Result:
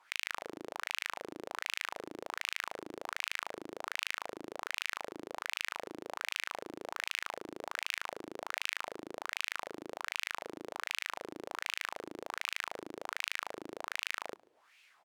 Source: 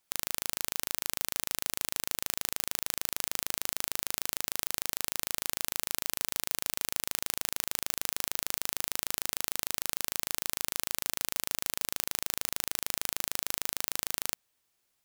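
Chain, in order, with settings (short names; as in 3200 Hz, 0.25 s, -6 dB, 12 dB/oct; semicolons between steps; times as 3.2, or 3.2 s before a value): negative-ratio compressor -42 dBFS, ratio -1; wah 1.3 Hz 310–2600 Hz, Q 3.5; outdoor echo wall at 24 m, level -23 dB; gain +18 dB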